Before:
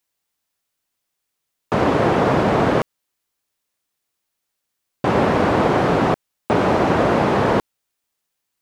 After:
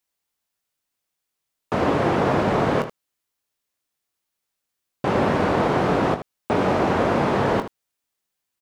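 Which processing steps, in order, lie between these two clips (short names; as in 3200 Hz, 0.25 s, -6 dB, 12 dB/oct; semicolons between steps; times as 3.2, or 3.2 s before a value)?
early reflections 21 ms -9.5 dB, 78 ms -11.5 dB; gain -4 dB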